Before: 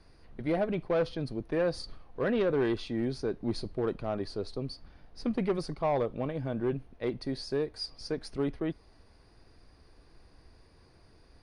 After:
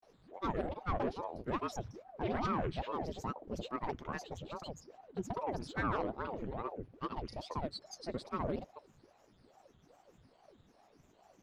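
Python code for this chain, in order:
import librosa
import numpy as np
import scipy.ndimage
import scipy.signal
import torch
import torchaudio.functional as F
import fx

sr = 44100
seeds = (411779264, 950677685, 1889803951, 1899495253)

y = fx.granulator(x, sr, seeds[0], grain_ms=100.0, per_s=20.0, spray_ms=100.0, spread_st=7)
y = fx.ring_lfo(y, sr, carrier_hz=430.0, swing_pct=80, hz=2.4)
y = F.gain(torch.from_numpy(y), -3.0).numpy()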